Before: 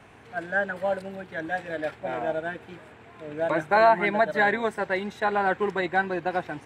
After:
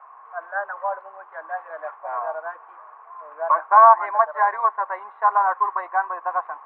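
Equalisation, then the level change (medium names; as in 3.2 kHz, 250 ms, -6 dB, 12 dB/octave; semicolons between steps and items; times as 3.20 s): high-pass 680 Hz 24 dB/octave; resonant low-pass 1.1 kHz, resonance Q 11; distance through air 310 m; 0.0 dB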